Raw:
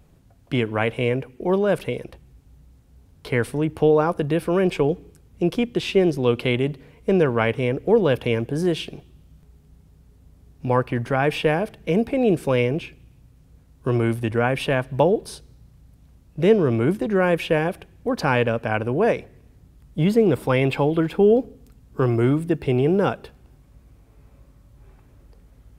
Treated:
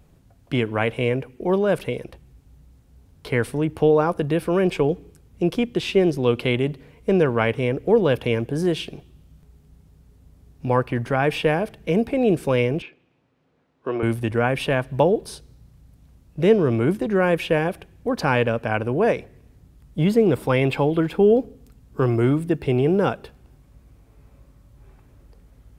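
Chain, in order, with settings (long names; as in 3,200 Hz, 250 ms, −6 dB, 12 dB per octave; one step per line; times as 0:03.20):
0:12.82–0:14.03: band-pass filter 340–2,900 Hz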